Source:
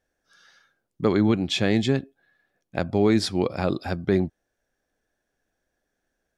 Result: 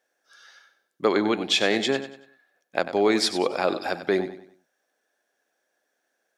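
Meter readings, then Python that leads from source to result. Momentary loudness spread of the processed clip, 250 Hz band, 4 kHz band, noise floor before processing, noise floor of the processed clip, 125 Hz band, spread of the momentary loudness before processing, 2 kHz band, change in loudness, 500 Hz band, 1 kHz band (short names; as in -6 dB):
8 LU, -4.5 dB, +5.0 dB, -80 dBFS, -77 dBFS, -14.5 dB, 8 LU, +5.0 dB, -0.5 dB, +1.5 dB, +4.5 dB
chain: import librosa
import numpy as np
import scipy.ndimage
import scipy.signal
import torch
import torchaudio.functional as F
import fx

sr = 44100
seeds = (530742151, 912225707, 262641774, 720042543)

p1 = scipy.signal.sosfilt(scipy.signal.butter(2, 450.0, 'highpass', fs=sr, output='sos'), x)
p2 = p1 + fx.echo_feedback(p1, sr, ms=95, feedback_pct=37, wet_db=-12, dry=0)
y = p2 * 10.0 ** (4.5 / 20.0)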